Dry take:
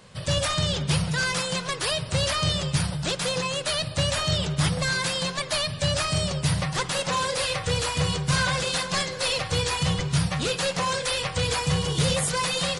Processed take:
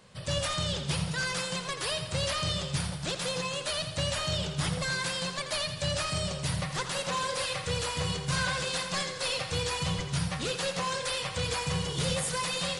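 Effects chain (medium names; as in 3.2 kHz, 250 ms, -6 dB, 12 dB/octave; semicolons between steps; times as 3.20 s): hum notches 50/100/150 Hz; thinning echo 84 ms, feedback 58%, level -9.5 dB; 7.00–7.73 s: crackle 130 per s -> 39 per s -56 dBFS; trim -6 dB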